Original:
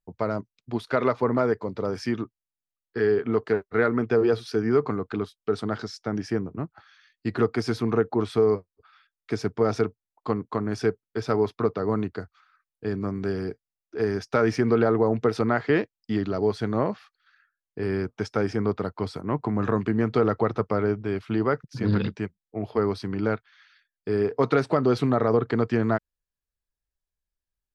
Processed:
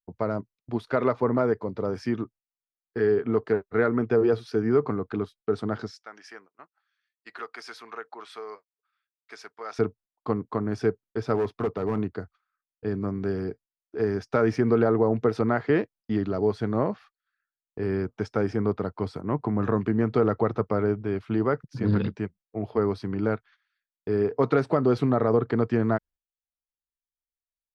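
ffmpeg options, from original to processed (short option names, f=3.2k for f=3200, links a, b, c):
-filter_complex "[0:a]asettb=1/sr,asplit=3[a][b][c];[a]atrim=end=5.914[d];[b]atrim=start=5.91:end=9.79,asetpts=PTS-STARTPTS,afade=t=in:d=0.004:c=qsin,afade=t=out:st=3.876:d=0.004:c=qsin,highpass=1.3k[e];[c]atrim=start=9.786[f];[d][e]acrossfade=d=0.004:c1=hsin:c2=qsin[g];[g][f]acrossfade=d=0.004:c1=qsin:c2=hsin,asettb=1/sr,asplit=3[h][i][j];[h]atrim=end=11.354[k];[i]atrim=start=11.35:end=11.98,asetpts=PTS-STARTPTS,afade=t=in:d=0.004:c=qsin,afade=t=out:st=0.626:d=0.004:c=qsin,volume=21dB,asoftclip=hard,volume=-21dB[l];[j]atrim=start=11.976[m];[k][l]acrossfade=d=0.004:c1=hsin:c2=qsin[n];[n][m]acrossfade=d=0.004:c1=qsin:c2=hsin,agate=range=-17dB:threshold=-48dB:ratio=16:detection=peak,highshelf=f=2.1k:g=-8"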